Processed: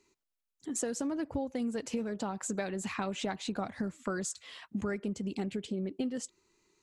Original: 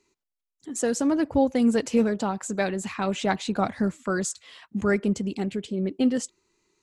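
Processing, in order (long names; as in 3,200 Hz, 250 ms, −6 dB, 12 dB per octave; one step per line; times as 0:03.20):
downward compressor 10 to 1, threshold −30 dBFS, peak gain reduction 14.5 dB
level −1 dB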